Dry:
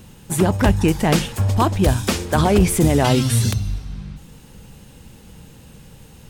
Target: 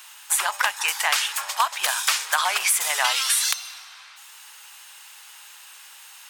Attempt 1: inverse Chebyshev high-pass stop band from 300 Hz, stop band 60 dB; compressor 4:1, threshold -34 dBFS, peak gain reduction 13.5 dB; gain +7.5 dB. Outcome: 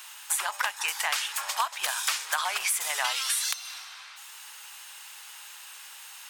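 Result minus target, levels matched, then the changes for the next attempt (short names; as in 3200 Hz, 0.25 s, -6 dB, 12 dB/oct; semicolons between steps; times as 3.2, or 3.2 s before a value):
compressor: peak gain reduction +6.5 dB
change: compressor 4:1, threshold -25 dBFS, peak gain reduction 7 dB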